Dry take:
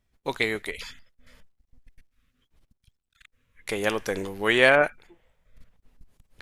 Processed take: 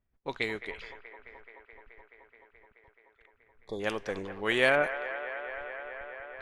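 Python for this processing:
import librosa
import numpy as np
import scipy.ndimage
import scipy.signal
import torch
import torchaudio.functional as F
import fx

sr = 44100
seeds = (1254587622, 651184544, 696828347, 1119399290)

y = fx.spec_erase(x, sr, start_s=3.35, length_s=0.45, low_hz=1200.0, high_hz=3300.0)
y = fx.echo_wet_bandpass(y, sr, ms=214, feedback_pct=85, hz=1100.0, wet_db=-10.5)
y = fx.env_lowpass(y, sr, base_hz=1900.0, full_db=-18.0)
y = y * librosa.db_to_amplitude(-6.5)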